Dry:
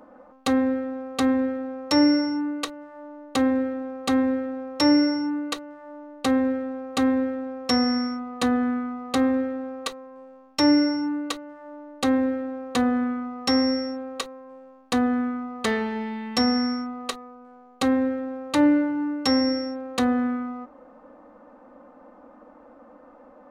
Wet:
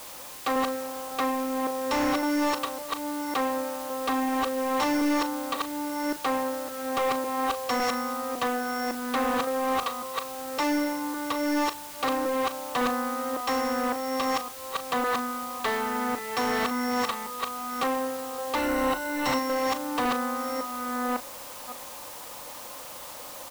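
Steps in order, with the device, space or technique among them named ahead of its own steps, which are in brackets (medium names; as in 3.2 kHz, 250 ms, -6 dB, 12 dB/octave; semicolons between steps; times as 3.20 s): chunks repeated in reverse 557 ms, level 0 dB; drive-through speaker (band-pass 460–3500 Hz; peaking EQ 1 kHz +8 dB 0.56 oct; hard clipper -22.5 dBFS, distortion -10 dB; white noise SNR 14 dB); 18.56–19.39 s: rippled EQ curve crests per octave 2, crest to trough 8 dB; doubling 37 ms -12 dB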